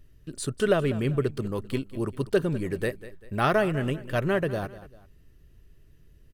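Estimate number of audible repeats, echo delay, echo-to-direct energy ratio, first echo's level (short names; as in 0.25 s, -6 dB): 2, 0.196 s, -15.5 dB, -16.0 dB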